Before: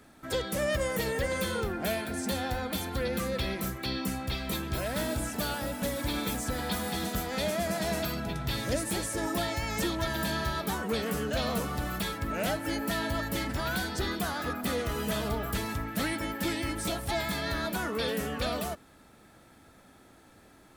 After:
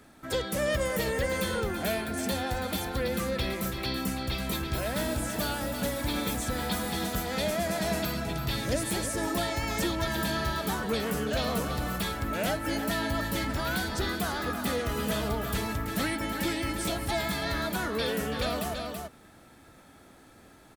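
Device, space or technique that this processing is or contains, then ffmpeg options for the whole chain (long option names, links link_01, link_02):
ducked delay: -filter_complex "[0:a]asplit=3[link_01][link_02][link_03];[link_02]adelay=331,volume=-5dB[link_04];[link_03]apad=whole_len=930116[link_05];[link_04][link_05]sidechaincompress=threshold=-36dB:ratio=8:attack=16:release=112[link_06];[link_01][link_06]amix=inputs=2:normalize=0,volume=1dB"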